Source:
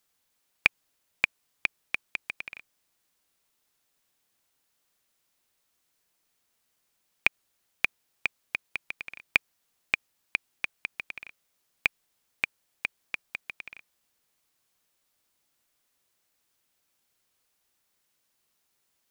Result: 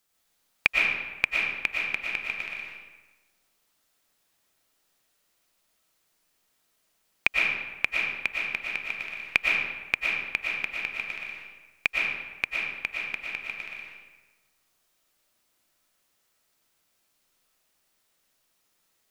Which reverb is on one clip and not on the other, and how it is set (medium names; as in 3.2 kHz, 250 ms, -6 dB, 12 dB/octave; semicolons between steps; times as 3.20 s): algorithmic reverb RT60 1.2 s, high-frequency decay 0.7×, pre-delay 75 ms, DRR -3 dB